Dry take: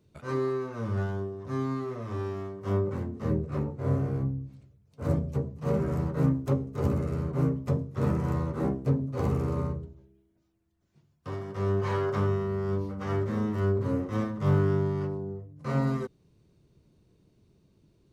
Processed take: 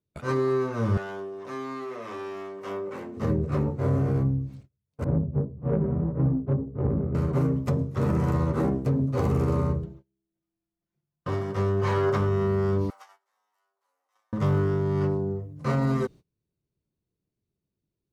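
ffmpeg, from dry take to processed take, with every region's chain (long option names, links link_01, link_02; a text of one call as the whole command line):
ffmpeg -i in.wav -filter_complex "[0:a]asettb=1/sr,asplit=3[link_01][link_02][link_03];[link_01]atrim=end=0.974[link_04];[link_02]atrim=start=0.97:end=3.17,asetpts=PTS-STARTPTS,afade=type=in:duration=0.004:curve=qsin,afade=type=out:start_time=2.196:duration=0.004:curve=qsin,highpass=370,equalizer=frequency=2500:width=1.8:gain=5.5,acompressor=threshold=-42dB:ratio=2:attack=3.2:release=140:knee=1:detection=peak[link_05];[link_03]atrim=start=3.166[link_06];[link_04][link_05]acrossfade=duration=0.004:curve1=hsin:curve2=qsin[link_07];[link_07][link_06]acrossfade=duration=0.004:curve1=qsin:curve2=hsin,asettb=1/sr,asplit=3[link_08][link_09][link_10];[link_08]atrim=end=5.044[link_11];[link_09]atrim=start=5.04:end=7.15,asetpts=PTS-STARTPTS,afade=type=in:duration=0.004:curve=qsin,afade=type=out:start_time=2.106:duration=0.004:curve=qsin,flanger=delay=16:depth=4.7:speed=1.7,adynamicsmooth=sensitivity=0.5:basefreq=510[link_12];[link_10]atrim=start=7.146[link_13];[link_11][link_12]acrossfade=duration=0.004:curve1=hsin:curve2=qsin[link_14];[link_14][link_13]acrossfade=duration=0.004:curve1=qsin:curve2=hsin,asettb=1/sr,asplit=3[link_15][link_16][link_17];[link_15]atrim=end=9.834[link_18];[link_16]atrim=start=9.83:end=11.29,asetpts=PTS-STARTPTS,afade=type=in:duration=0.004:curve=qsin,afade=type=out:start_time=1.456:duration=0.004:curve=qsin,bass=frequency=250:gain=-1,treble=frequency=4000:gain=-6,acompressor=mode=upward:threshold=-60dB:ratio=2.5:attack=3.2:release=140:knee=2.83:detection=peak,aecho=1:1:5.8:0.65,atrim=end_sample=64386[link_19];[link_17]atrim=start=11.286[link_20];[link_18][link_19]acrossfade=duration=0.004:curve1=hsin:curve2=qsin[link_21];[link_21][link_20]acrossfade=duration=0.004:curve1=qsin:curve2=hsin,asettb=1/sr,asplit=3[link_22][link_23][link_24];[link_22]atrim=end=12.904[link_25];[link_23]atrim=start=12.9:end=14.33,asetpts=PTS-STARTPTS,afade=type=in:duration=0.004:curve=qsin,afade=type=out:start_time=1.426:duration=0.004:curve=qsin,aderivative,acompressor=threshold=-56dB:ratio=2.5:attack=3.2:release=140:knee=1:detection=peak,highpass=frequency=790:width_type=q:width=4.4[link_26];[link_24]atrim=start=14.326[link_27];[link_25][link_26]acrossfade=duration=0.004:curve1=hsin:curve2=qsin[link_28];[link_28][link_27]acrossfade=duration=0.004:curve1=qsin:curve2=hsin,agate=range=-28dB:threshold=-50dB:ratio=16:detection=peak,alimiter=limit=-23dB:level=0:latency=1:release=61,volume=7dB" out.wav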